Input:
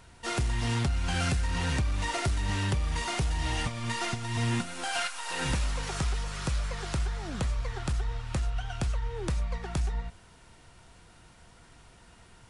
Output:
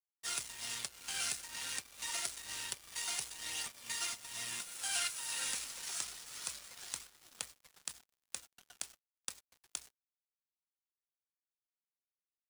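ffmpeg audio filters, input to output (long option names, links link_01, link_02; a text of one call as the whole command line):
ffmpeg -i in.wav -af "aphaser=in_gain=1:out_gain=1:delay=3.9:decay=0.26:speed=0.27:type=triangular,aderivative,aeval=exprs='sgn(val(0))*max(abs(val(0))-0.00376,0)':channel_layout=same,volume=5dB" out.wav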